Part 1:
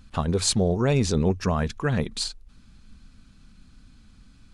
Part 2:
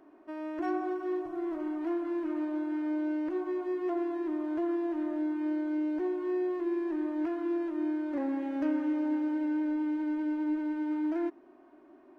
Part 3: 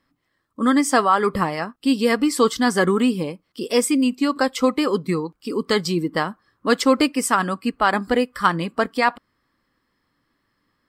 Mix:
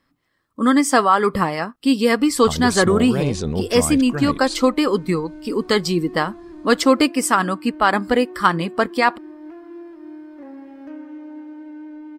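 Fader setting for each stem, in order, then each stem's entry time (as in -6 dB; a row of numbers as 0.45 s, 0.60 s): -1.5 dB, -6.0 dB, +2.0 dB; 2.30 s, 2.25 s, 0.00 s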